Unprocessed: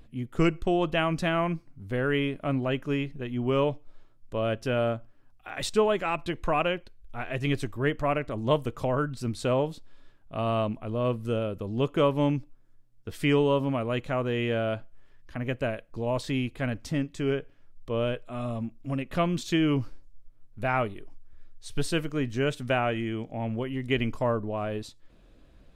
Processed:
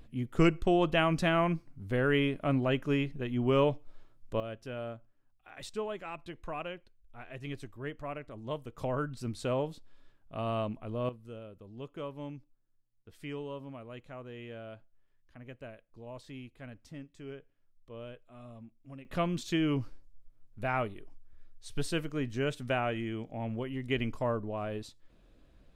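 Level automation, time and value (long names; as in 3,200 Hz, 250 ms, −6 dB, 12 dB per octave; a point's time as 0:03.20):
−1 dB
from 0:04.40 −13 dB
from 0:08.78 −6 dB
from 0:11.09 −17 dB
from 0:19.05 −5 dB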